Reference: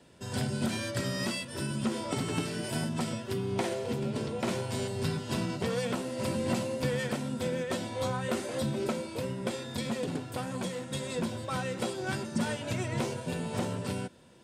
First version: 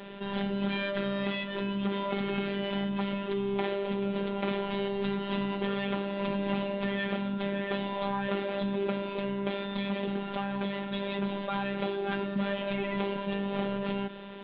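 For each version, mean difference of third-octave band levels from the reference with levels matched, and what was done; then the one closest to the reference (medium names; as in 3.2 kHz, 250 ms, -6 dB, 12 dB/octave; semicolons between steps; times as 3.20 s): 12.0 dB: steep low-pass 3.7 kHz 72 dB/octave; bass shelf 93 Hz -7.5 dB; robot voice 199 Hz; level flattener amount 50%; trim +1 dB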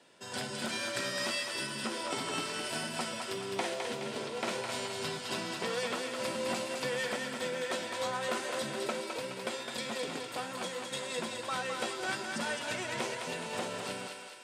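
6.5 dB: frequency weighting A; thinning echo 210 ms, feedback 57%, high-pass 580 Hz, level -4 dB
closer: second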